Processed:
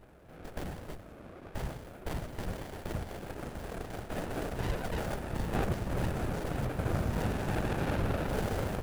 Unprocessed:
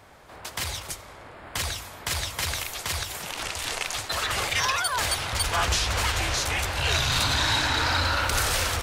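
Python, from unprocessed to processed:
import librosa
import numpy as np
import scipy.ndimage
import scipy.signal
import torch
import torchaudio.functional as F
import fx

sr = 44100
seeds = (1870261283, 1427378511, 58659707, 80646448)

y = fx.bass_treble(x, sr, bass_db=-3, treble_db=-14)
y = fx.whisperise(y, sr, seeds[0])
y = fx.curve_eq(y, sr, hz=(1100.0, 3100.0, 11000.0), db=(0, -29, 15))
y = fx.running_max(y, sr, window=33)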